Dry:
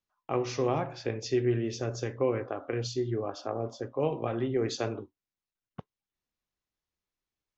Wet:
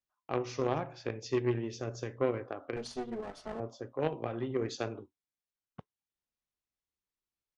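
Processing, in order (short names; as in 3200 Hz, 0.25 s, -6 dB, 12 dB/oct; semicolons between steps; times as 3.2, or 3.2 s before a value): 2.76–3.6 minimum comb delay 4.6 ms; added harmonics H 3 -15 dB, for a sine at -15.5 dBFS; downsampling 22050 Hz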